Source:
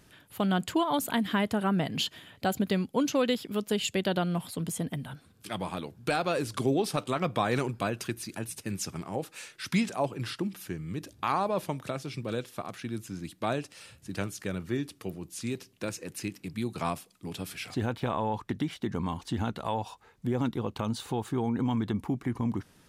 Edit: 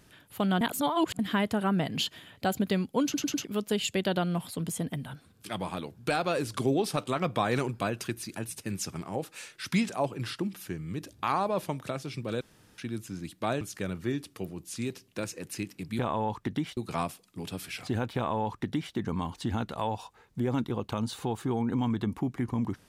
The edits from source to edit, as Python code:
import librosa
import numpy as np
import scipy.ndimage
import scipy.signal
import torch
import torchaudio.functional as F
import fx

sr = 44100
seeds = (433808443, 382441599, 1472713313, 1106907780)

y = fx.edit(x, sr, fx.reverse_span(start_s=0.61, length_s=0.58),
    fx.stutter_over(start_s=3.04, slice_s=0.1, count=4),
    fx.room_tone_fill(start_s=12.41, length_s=0.37),
    fx.cut(start_s=13.61, length_s=0.65),
    fx.duplicate(start_s=18.03, length_s=0.78, to_s=16.64), tone=tone)